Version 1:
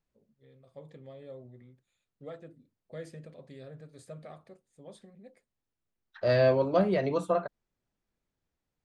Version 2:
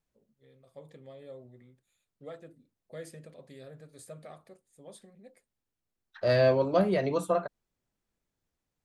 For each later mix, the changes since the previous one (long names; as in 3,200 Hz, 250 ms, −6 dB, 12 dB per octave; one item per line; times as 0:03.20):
first voice: add low-shelf EQ 190 Hz −5 dB
master: remove high-frequency loss of the air 62 metres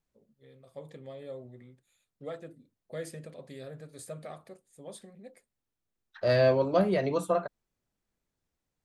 first voice +4.5 dB